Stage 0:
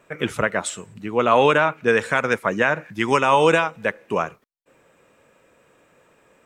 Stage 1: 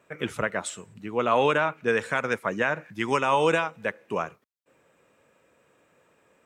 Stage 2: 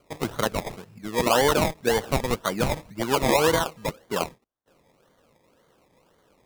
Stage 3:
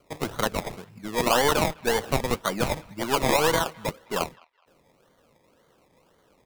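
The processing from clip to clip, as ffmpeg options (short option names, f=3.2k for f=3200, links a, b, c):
-af "highpass=51,volume=-6dB"
-af "acrusher=samples=24:mix=1:aa=0.000001:lfo=1:lforange=14.4:lforate=1.9,volume=1.5dB"
-filter_complex "[0:a]acrossover=split=740|4300[a][b][c];[a]aeval=exprs='clip(val(0),-1,0.0355)':c=same[d];[b]aecho=1:1:208|416:0.0708|0.0212[e];[d][e][c]amix=inputs=3:normalize=0"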